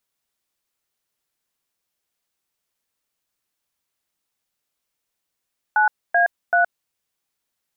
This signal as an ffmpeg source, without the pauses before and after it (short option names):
-f lavfi -i "aevalsrc='0.158*clip(min(mod(t,0.384),0.119-mod(t,0.384))/0.002,0,1)*(eq(floor(t/0.384),0)*(sin(2*PI*852*mod(t,0.384))+sin(2*PI*1477*mod(t,0.384)))+eq(floor(t/0.384),1)*(sin(2*PI*697*mod(t,0.384))+sin(2*PI*1633*mod(t,0.384)))+eq(floor(t/0.384),2)*(sin(2*PI*697*mod(t,0.384))+sin(2*PI*1477*mod(t,0.384))))':d=1.152:s=44100"